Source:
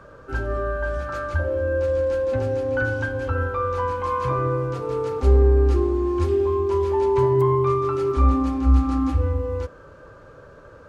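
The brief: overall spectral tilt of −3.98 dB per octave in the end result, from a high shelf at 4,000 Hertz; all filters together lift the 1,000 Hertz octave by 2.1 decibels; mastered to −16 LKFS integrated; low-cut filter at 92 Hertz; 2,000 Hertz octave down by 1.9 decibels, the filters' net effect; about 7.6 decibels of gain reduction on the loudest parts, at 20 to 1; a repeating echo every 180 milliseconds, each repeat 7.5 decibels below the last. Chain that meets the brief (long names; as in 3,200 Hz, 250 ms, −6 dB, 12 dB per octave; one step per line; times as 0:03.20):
high-pass filter 92 Hz
parametric band 1,000 Hz +4 dB
parametric band 2,000 Hz −4 dB
high-shelf EQ 4,000 Hz −7 dB
downward compressor 20 to 1, threshold −22 dBFS
repeating echo 180 ms, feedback 42%, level −7.5 dB
level +10 dB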